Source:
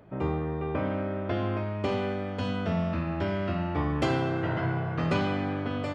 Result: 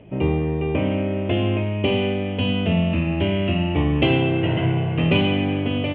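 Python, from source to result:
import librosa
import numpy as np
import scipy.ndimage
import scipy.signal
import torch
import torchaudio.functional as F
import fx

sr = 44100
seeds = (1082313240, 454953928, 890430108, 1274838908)

y = fx.curve_eq(x, sr, hz=(380.0, 950.0, 1400.0, 2900.0, 4700.0, 7500.0), db=(0, -7, -15, 10, -25, -30))
y = y * 10.0 ** (9.0 / 20.0)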